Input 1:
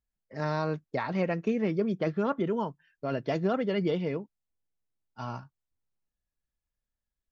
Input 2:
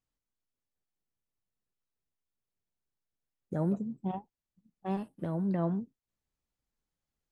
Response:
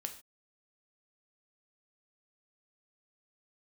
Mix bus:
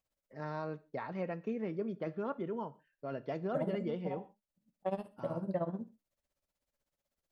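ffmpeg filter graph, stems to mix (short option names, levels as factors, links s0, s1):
-filter_complex "[0:a]highshelf=f=2500:g=-12,volume=0.316,asplit=3[s0][s1][s2];[s1]volume=0.631[s3];[1:a]equalizer=f=580:t=o:w=0.3:g=13.5,tremolo=f=16:d=0.9,volume=1.26,asplit=2[s4][s5];[s5]volume=0.631[s6];[s2]apad=whole_len=322591[s7];[s4][s7]sidechaincompress=threshold=0.00178:ratio=8:attack=16:release=569[s8];[2:a]atrim=start_sample=2205[s9];[s3][s6]amix=inputs=2:normalize=0[s10];[s10][s9]afir=irnorm=-1:irlink=0[s11];[s0][s8][s11]amix=inputs=3:normalize=0,lowshelf=f=280:g=-5.5,alimiter=limit=0.0708:level=0:latency=1:release=481"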